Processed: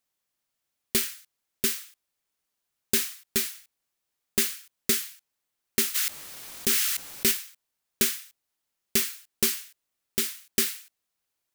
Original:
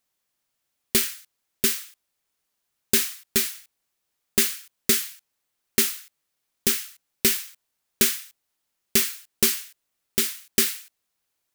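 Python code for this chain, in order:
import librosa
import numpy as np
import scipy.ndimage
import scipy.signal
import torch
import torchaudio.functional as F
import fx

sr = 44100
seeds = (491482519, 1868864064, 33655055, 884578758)

y = fx.sustainer(x, sr, db_per_s=26.0, at=(5.94, 7.3), fade=0.02)
y = F.gain(torch.from_numpy(y), -4.0).numpy()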